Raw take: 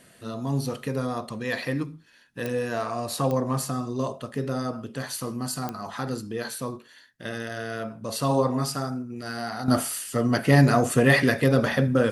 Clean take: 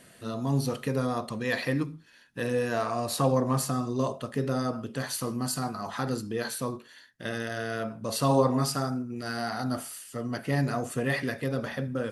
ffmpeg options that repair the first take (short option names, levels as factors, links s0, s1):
-af "adeclick=t=4,asetnsamples=n=441:p=0,asendcmd='9.68 volume volume -10dB',volume=1"